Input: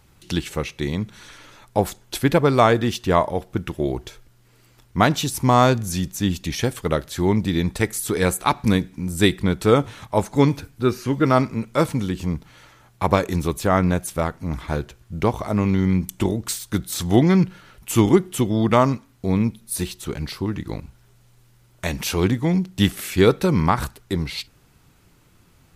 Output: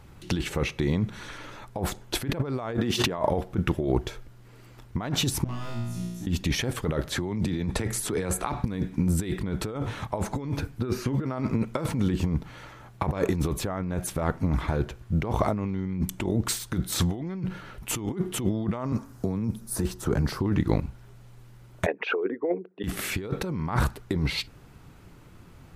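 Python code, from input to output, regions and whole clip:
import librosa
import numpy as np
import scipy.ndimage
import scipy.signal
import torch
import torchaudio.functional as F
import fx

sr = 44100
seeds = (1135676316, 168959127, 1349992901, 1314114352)

y = fx.chain(x, sr, fx.highpass(hz=130.0, slope=12),
    fx.pre_swell(db_per_s=100.0), at=(2.78, 3.18))
y = fx.chain(y, sr, fx.clip_hard(threshold_db=-18.5),
    fx.peak_eq(hz=1100.0, db=-5.0, octaves=2.7),
    fx.comb_fb(f0_hz=59.0, decay_s=1.2, harmonics='all', damping=0.0, mix_pct=100), at=(5.44, 6.27))
y = fx.chain(y, sr, fx.lowpass(hz=12000.0, slope=24),
    fx.hum_notches(base_hz=60, count=2),
    fx.band_squash(depth_pct=40), at=(7.12, 8.62))
y = fx.chain(y, sr, fx.band_shelf(hz=2900.0, db=-9.0, octaves=1.3),
    fx.band_squash(depth_pct=40), at=(18.92, 20.4))
y = fx.chain(y, sr, fx.envelope_sharpen(power=2.0),
    fx.cabinet(low_hz=430.0, low_slope=24, high_hz=2500.0, hz=(440.0, 720.0, 1500.0), db=(9, 4, 9)), at=(21.86, 22.84))
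y = fx.high_shelf(y, sr, hz=2700.0, db=-10.0)
y = fx.over_compress(y, sr, threshold_db=-27.0, ratio=-1.0)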